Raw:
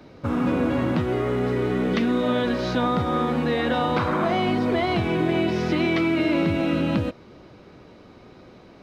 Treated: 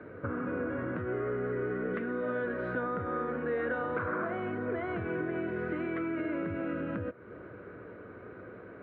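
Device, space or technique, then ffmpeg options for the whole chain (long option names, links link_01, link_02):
bass amplifier: -af "acompressor=threshold=-35dB:ratio=3,highpass=88,equalizer=frequency=99:width_type=q:width=4:gain=4,equalizer=frequency=150:width_type=q:width=4:gain=-6,equalizer=frequency=230:width_type=q:width=4:gain=-4,equalizer=frequency=460:width_type=q:width=4:gain=6,equalizer=frequency=830:width_type=q:width=4:gain=-9,equalizer=frequency=1500:width_type=q:width=4:gain=10,lowpass=frequency=2000:width=0.5412,lowpass=frequency=2000:width=1.3066"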